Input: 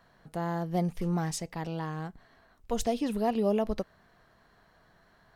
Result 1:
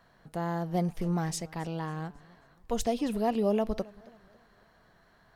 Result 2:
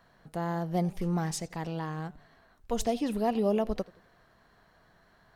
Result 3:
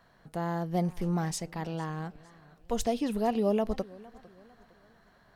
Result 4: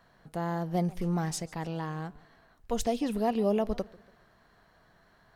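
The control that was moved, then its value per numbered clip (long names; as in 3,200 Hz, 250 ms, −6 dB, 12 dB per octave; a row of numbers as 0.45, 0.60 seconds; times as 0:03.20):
feedback echo with a swinging delay time, delay time: 271, 86, 454, 141 milliseconds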